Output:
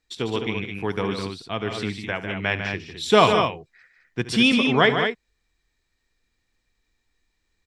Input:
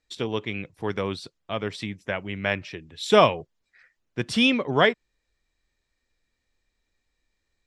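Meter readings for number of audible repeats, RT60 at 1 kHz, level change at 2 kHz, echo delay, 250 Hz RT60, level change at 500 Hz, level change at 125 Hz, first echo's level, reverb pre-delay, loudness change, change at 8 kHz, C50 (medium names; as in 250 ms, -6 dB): 3, no reverb, +3.5 dB, 71 ms, no reverb, +1.5 dB, +3.5 dB, -15.5 dB, no reverb, +2.5 dB, +3.5 dB, no reverb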